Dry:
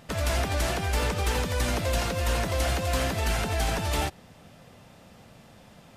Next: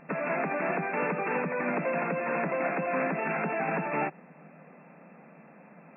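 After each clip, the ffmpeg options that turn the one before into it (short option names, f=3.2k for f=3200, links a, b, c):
-af "afftfilt=real='re*between(b*sr/4096,140,2700)':imag='im*between(b*sr/4096,140,2700)':win_size=4096:overlap=0.75,volume=1dB"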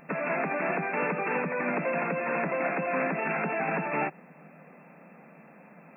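-af "crystalizer=i=2:c=0"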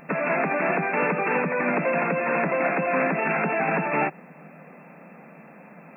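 -af "acontrast=36"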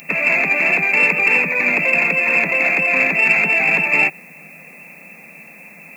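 -af "aexciter=amount=10.3:drive=8.1:freq=2.3k,volume=-1dB"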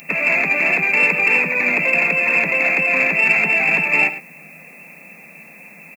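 -filter_complex "[0:a]asplit=2[a][b];[b]adelay=105,volume=-13dB,highshelf=f=4k:g=-2.36[c];[a][c]amix=inputs=2:normalize=0,volume=-1dB"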